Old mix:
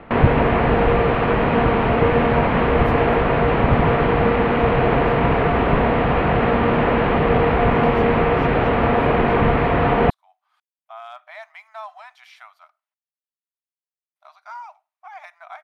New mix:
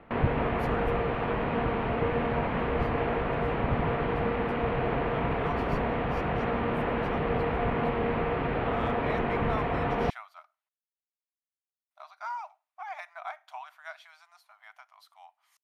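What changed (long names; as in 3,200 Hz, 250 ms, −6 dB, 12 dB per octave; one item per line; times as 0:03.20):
speech: entry −2.25 s
background −11.5 dB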